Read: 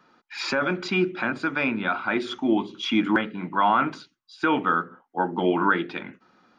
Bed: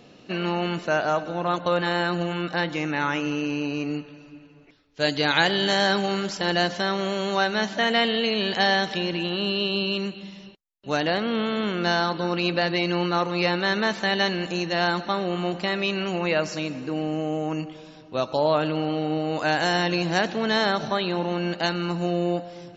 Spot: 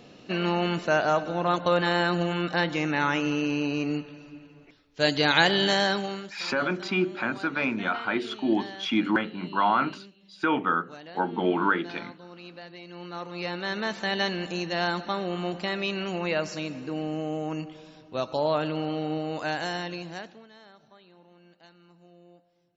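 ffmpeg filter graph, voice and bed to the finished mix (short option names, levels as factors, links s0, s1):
-filter_complex "[0:a]adelay=6000,volume=0.75[s0];[1:a]volume=6.68,afade=t=out:st=5.61:d=0.76:silence=0.0944061,afade=t=in:st=12.88:d=1.32:silence=0.149624,afade=t=out:st=19.11:d=1.37:silence=0.0501187[s1];[s0][s1]amix=inputs=2:normalize=0"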